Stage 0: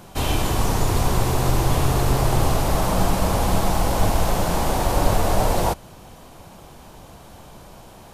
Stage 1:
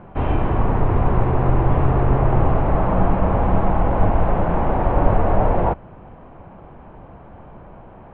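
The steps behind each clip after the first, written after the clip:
Bessel low-pass filter 1,400 Hz, order 8
level +3 dB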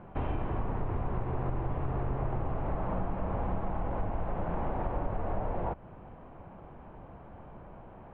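downward compressor 5 to 1, threshold −21 dBFS, peak gain reduction 12.5 dB
level −7.5 dB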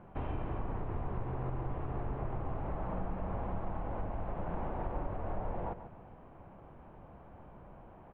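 repeating echo 141 ms, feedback 37%, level −11 dB
level −5 dB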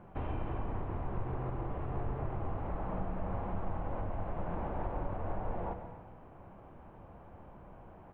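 reverb whose tail is shaped and stops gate 320 ms flat, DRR 8.5 dB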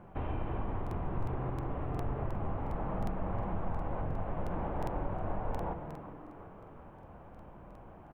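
echo with shifted repeats 370 ms, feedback 47%, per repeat +140 Hz, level −14 dB
regular buffer underruns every 0.36 s, samples 2,048, repeat, from 0:00.82
level +1 dB

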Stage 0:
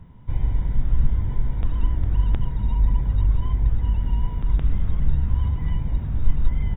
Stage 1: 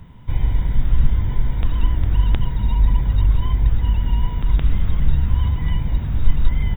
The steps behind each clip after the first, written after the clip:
high-shelf EQ 2,200 Hz +12 dB
level +3.5 dB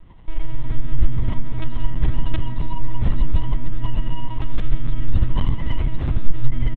linear-prediction vocoder at 8 kHz pitch kept
echo with shifted repeats 131 ms, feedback 31%, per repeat +120 Hz, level −21 dB
in parallel at −0.5 dB: dead-zone distortion −31.5 dBFS
on the sum: level −2 dB

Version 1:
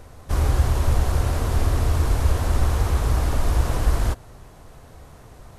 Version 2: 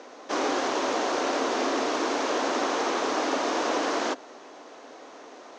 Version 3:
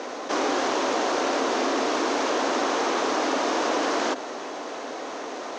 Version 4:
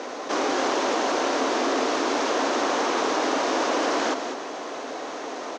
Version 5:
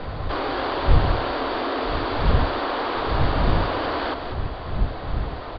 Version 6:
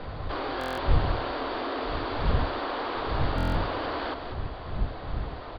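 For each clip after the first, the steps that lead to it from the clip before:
Chebyshev band-pass filter 270–6,400 Hz, order 4; level +5.5 dB
envelope flattener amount 50%; level +1 dB
single-tap delay 198 ms −8 dB
wind on the microphone 82 Hz −21 dBFS; Chebyshev low-pass with heavy ripple 4,700 Hz, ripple 3 dB
buffer that repeats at 0:00.59/0:03.36, samples 1,024, times 7; level −6 dB

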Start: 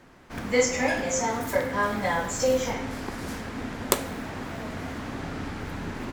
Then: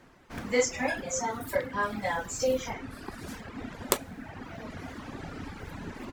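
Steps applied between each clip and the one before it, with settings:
reverb reduction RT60 1.6 s
level −3 dB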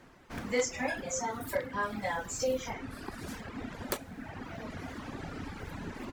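in parallel at −1 dB: downward compressor, threshold −37 dBFS, peak gain reduction 17 dB
on the sum: wave folding −14.5 dBFS
level −5.5 dB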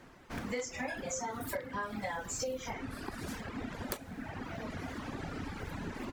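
downward compressor 6 to 1, threshold −35 dBFS, peak gain reduction 10.5 dB
level +1 dB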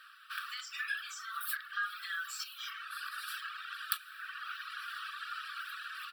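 linear-phase brick-wall high-pass 1,100 Hz
phaser with its sweep stopped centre 1,400 Hz, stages 8
level +9 dB

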